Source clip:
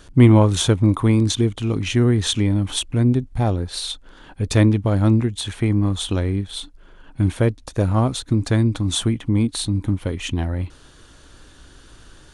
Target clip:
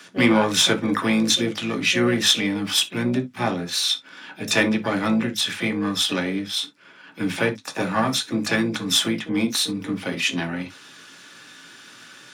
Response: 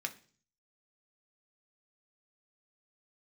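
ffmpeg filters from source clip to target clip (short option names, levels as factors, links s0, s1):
-filter_complex "[0:a]highpass=f=130:w=0.5412,highpass=f=130:w=1.3066,acrossover=split=230|850[s0][s1][s2];[s0]asoftclip=type=tanh:threshold=0.0631[s3];[s2]asplit=2[s4][s5];[s5]highpass=f=720:p=1,volume=3.55,asoftclip=type=tanh:threshold=0.531[s6];[s4][s6]amix=inputs=2:normalize=0,lowpass=f=8000:p=1,volume=0.501[s7];[s3][s1][s7]amix=inputs=3:normalize=0,asplit=2[s8][s9];[s9]asetrate=66075,aresample=44100,atempo=0.66742,volume=0.316[s10];[s8][s10]amix=inputs=2:normalize=0[s11];[1:a]atrim=start_sample=2205,atrim=end_sample=3528[s12];[s11][s12]afir=irnorm=-1:irlink=0"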